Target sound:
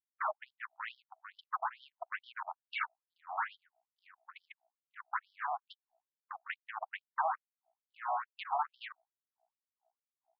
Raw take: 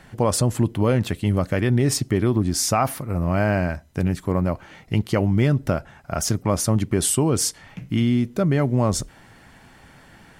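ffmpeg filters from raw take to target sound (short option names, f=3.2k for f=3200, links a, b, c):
-filter_complex "[0:a]afftfilt=real='re*gte(hypot(re,im),0.562)':imag='im*gte(hypot(re,im),0.562)':win_size=1024:overlap=0.75,aecho=1:1:5.2:0.33,acrossover=split=130|560[a][b][c];[a]acompressor=threshold=-26dB:ratio=4[d];[b]acompressor=threshold=-23dB:ratio=4[e];[c]acompressor=threshold=-35dB:ratio=4[f];[d][e][f]amix=inputs=3:normalize=0,acrossover=split=190|1100[g][h][i];[g]volume=26.5dB,asoftclip=hard,volume=-26.5dB[j];[j][h][i]amix=inputs=3:normalize=0,aeval=exprs='val(0)+0.0126*(sin(2*PI*60*n/s)+sin(2*PI*2*60*n/s)/2+sin(2*PI*3*60*n/s)/3+sin(2*PI*4*60*n/s)/4+sin(2*PI*5*60*n/s)/5)':c=same,aresample=11025,asoftclip=type=tanh:threshold=-28.5dB,aresample=44100,afftfilt=real='re*between(b*sr/1024,890*pow(4300/890,0.5+0.5*sin(2*PI*2.3*pts/sr))/1.41,890*pow(4300/890,0.5+0.5*sin(2*PI*2.3*pts/sr))*1.41)':imag='im*between(b*sr/1024,890*pow(4300/890,0.5+0.5*sin(2*PI*2.3*pts/sr))/1.41,890*pow(4300/890,0.5+0.5*sin(2*PI*2.3*pts/sr))*1.41)':win_size=1024:overlap=0.75,volume=14dB"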